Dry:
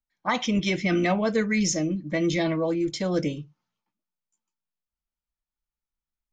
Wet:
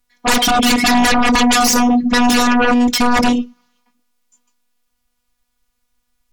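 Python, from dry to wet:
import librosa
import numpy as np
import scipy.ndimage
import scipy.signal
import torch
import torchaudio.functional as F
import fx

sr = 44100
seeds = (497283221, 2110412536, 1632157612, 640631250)

y = fx.robotise(x, sr, hz=243.0)
y = fx.fold_sine(y, sr, drive_db=18, ceiling_db=-11.0)
y = y * librosa.db_to_amplitude(1.5)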